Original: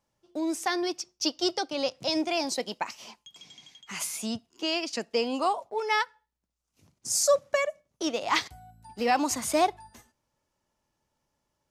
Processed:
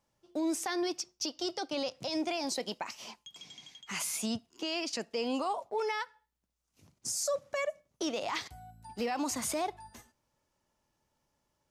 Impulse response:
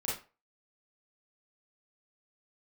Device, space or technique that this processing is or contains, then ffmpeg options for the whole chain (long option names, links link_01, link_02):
stacked limiters: -af "alimiter=limit=-19dB:level=0:latency=1:release=231,alimiter=level_in=0.5dB:limit=-24dB:level=0:latency=1:release=33,volume=-0.5dB"